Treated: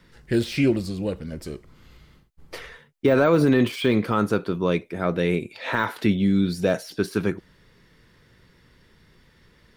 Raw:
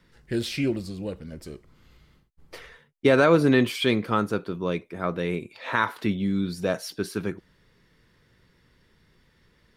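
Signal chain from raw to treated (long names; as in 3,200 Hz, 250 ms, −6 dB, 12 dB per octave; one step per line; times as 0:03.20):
de-essing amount 95%
0:04.79–0:06.94: parametric band 1,100 Hz −6 dB 0.46 octaves
brickwall limiter −15 dBFS, peak gain reduction 6.5 dB
level +5.5 dB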